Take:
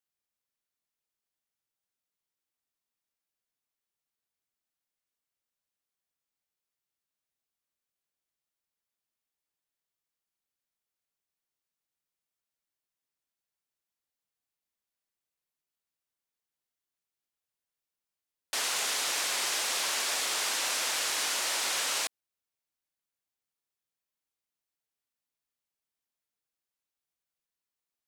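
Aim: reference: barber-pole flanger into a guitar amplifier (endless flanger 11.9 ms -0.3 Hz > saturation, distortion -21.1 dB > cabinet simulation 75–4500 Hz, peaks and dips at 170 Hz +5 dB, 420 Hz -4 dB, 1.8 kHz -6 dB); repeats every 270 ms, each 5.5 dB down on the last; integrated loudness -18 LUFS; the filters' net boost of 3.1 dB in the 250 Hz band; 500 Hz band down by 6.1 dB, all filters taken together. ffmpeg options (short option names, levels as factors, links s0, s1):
-filter_complex "[0:a]equalizer=f=250:t=o:g=7.5,equalizer=f=500:t=o:g=-8.5,aecho=1:1:270|540|810|1080|1350|1620|1890:0.531|0.281|0.149|0.079|0.0419|0.0222|0.0118,asplit=2[s0][s1];[s1]adelay=11.9,afreqshift=-0.3[s2];[s0][s2]amix=inputs=2:normalize=1,asoftclip=threshold=0.0596,highpass=75,equalizer=f=170:t=q:w=4:g=5,equalizer=f=420:t=q:w=4:g=-4,equalizer=f=1800:t=q:w=4:g=-6,lowpass=f=4500:w=0.5412,lowpass=f=4500:w=1.3066,volume=7.94"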